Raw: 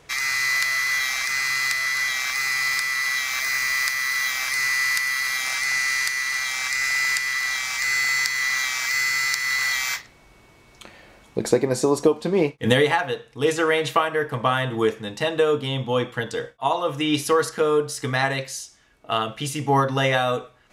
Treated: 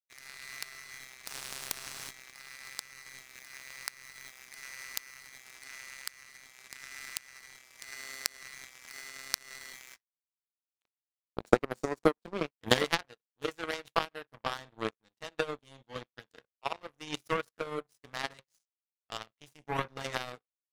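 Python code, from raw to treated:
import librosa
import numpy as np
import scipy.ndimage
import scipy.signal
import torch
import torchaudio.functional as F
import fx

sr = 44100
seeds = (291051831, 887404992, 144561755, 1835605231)

y = fx.high_shelf(x, sr, hz=8100.0, db=-7.5, at=(14.7, 15.24))
y = fx.power_curve(y, sr, exponent=3.0)
y = fx.spectral_comp(y, sr, ratio=4.0, at=(1.25, 2.09), fade=0.02)
y = y * librosa.db_to_amplitude(3.0)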